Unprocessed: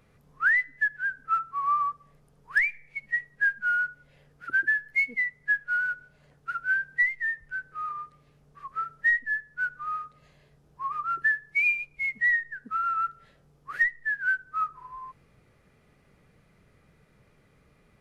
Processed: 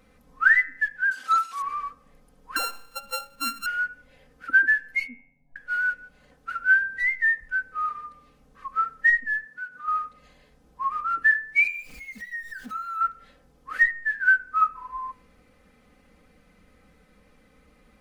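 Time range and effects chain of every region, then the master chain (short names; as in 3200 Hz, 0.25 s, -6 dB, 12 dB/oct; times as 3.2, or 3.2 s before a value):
1.11–1.62 delta modulation 64 kbps, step -42 dBFS + weighting filter A
2.56–3.66 sample sorter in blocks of 32 samples + compressor 2:1, threshold -33 dBFS
5.07–5.56 rippled Chebyshev low-pass 950 Hz, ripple 6 dB + bell 420 Hz -14 dB 1.5 oct + comb 7.3 ms, depth 68%
9.45–9.88 HPF 130 Hz + compressor, threshold -38 dBFS
11.67–13.01 zero-crossing step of -44 dBFS + compressor 2:1, threshold -45 dBFS
whole clip: comb 3.9 ms, depth 94%; de-hum 92.36 Hz, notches 30; gain +2 dB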